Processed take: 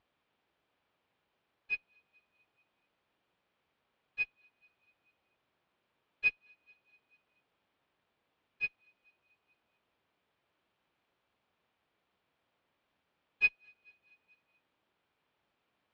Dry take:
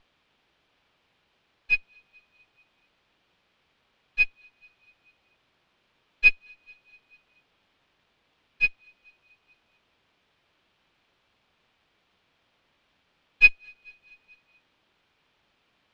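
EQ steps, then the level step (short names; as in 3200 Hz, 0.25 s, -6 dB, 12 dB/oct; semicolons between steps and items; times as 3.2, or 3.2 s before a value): HPF 50 Hz; low shelf 290 Hz -5 dB; high shelf 2100 Hz -10.5 dB; -6.0 dB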